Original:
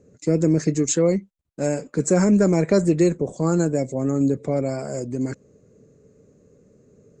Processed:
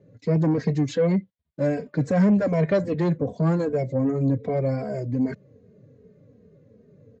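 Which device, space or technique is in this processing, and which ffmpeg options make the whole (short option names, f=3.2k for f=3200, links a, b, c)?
barber-pole flanger into a guitar amplifier: -filter_complex "[0:a]asplit=2[a][b];[b]adelay=2.9,afreqshift=-2.6[c];[a][c]amix=inputs=2:normalize=1,asoftclip=type=tanh:threshold=-17.5dB,highpass=80,equalizer=f=110:t=q:w=4:g=4,equalizer=f=350:t=q:w=4:g=-9,equalizer=f=840:t=q:w=4:g=-5,equalizer=f=1.3k:t=q:w=4:g=-8,equalizer=f=2.6k:t=q:w=4:g=-6,lowpass=f=3.8k:w=0.5412,lowpass=f=3.8k:w=1.3066,volume=5.5dB"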